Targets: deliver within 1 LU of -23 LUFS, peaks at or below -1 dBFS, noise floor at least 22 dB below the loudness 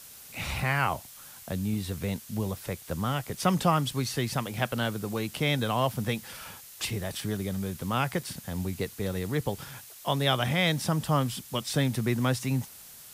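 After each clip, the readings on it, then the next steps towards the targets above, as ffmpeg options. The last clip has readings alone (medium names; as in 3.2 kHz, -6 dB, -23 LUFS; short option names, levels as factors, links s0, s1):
noise floor -48 dBFS; noise floor target -52 dBFS; loudness -29.5 LUFS; peak level -10.0 dBFS; loudness target -23.0 LUFS
-> -af "afftdn=nr=6:nf=-48"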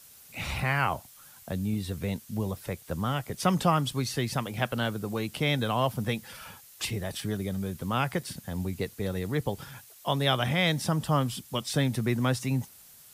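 noise floor -53 dBFS; loudness -30.0 LUFS; peak level -10.0 dBFS; loudness target -23.0 LUFS
-> -af "volume=2.24"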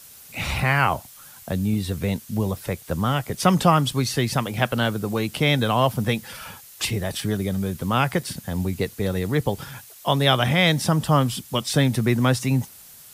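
loudness -23.0 LUFS; peak level -3.0 dBFS; noise floor -46 dBFS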